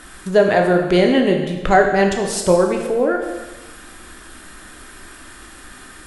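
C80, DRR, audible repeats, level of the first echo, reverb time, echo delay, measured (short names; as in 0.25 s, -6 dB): 7.0 dB, 2.0 dB, none, none, 1.2 s, none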